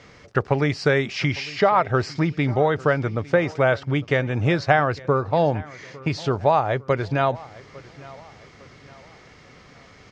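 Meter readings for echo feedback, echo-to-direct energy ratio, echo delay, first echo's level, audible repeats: 42%, -20.0 dB, 854 ms, -21.0 dB, 2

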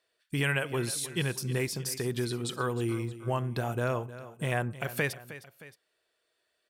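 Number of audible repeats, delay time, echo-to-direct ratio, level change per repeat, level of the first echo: 2, 311 ms, -14.0 dB, -5.5 dB, -15.0 dB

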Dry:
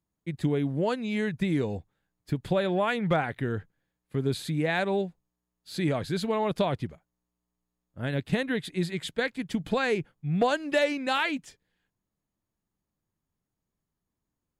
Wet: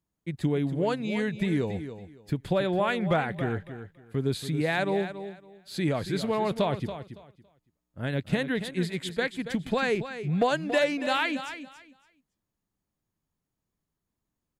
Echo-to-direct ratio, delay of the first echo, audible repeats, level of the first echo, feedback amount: -11.0 dB, 280 ms, 2, -11.0 dB, 21%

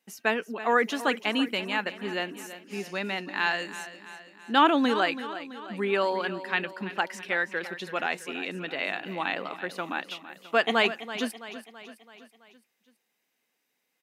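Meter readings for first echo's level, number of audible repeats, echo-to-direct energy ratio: -13.5 dB, 5, -12.0 dB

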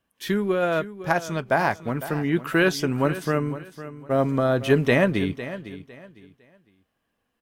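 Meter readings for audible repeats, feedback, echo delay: 2, 26%, 505 ms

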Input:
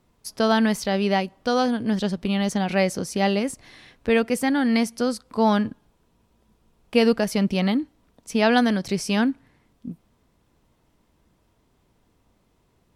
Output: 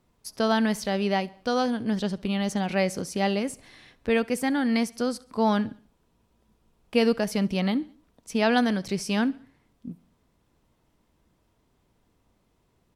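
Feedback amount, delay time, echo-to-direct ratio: 49%, 69 ms, -22.0 dB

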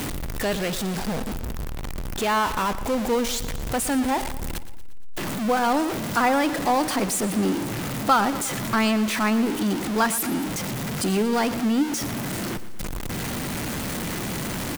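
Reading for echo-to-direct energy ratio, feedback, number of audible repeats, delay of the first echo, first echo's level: -13.5 dB, 56%, 4, 117 ms, -15.0 dB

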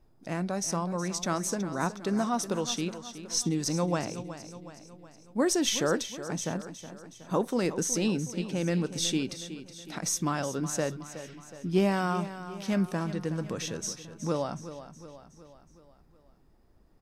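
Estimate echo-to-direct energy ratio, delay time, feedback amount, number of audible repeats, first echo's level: -11.0 dB, 369 ms, 53%, 5, -12.5 dB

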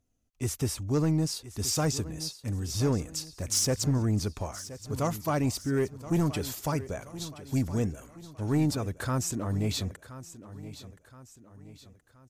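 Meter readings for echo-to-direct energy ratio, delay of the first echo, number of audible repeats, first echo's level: -14.0 dB, 1023 ms, 3, -15.0 dB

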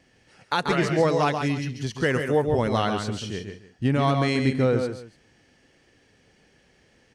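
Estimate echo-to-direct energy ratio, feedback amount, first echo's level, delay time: -5.5 dB, no regular repeats, -6.5 dB, 137 ms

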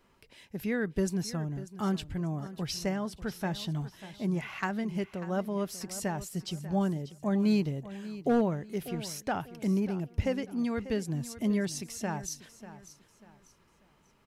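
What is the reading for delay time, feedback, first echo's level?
592 ms, 32%, -15.0 dB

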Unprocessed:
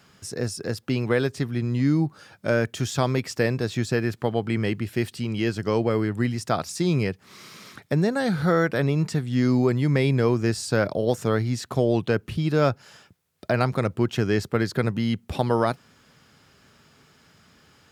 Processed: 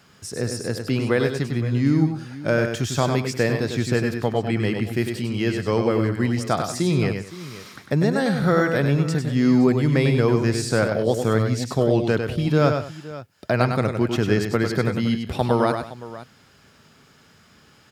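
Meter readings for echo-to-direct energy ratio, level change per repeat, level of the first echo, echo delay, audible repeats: -5.0 dB, no regular repeats, -6.0 dB, 100 ms, 3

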